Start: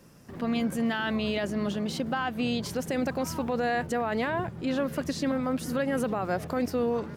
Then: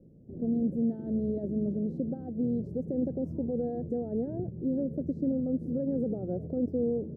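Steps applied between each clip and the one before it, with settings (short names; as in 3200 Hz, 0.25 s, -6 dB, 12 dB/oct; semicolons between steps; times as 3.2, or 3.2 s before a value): inverse Chebyshev low-pass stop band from 1000 Hz, stop band 40 dB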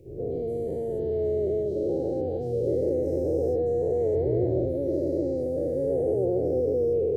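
spectral dilation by 0.48 s; EQ curve 120 Hz 0 dB, 220 Hz -24 dB, 370 Hz +5 dB, 610 Hz -1 dB, 970 Hz -3 dB, 1400 Hz -15 dB, 2300 Hz +15 dB, 3300 Hz +8 dB; gain +2.5 dB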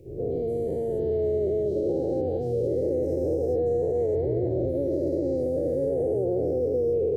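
limiter -20 dBFS, peak gain reduction 5 dB; gain +2 dB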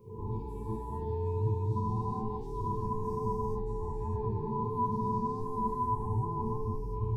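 band inversion scrambler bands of 500 Hz; resonator 110 Hz, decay 0.18 s, harmonics all, mix 100%; gain +2 dB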